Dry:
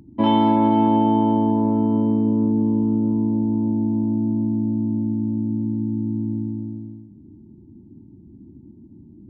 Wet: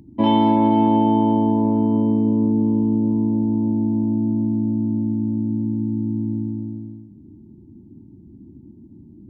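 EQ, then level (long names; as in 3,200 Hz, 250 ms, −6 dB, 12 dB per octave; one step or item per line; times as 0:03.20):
parametric band 1,400 Hz −11 dB 0.34 octaves
+1.0 dB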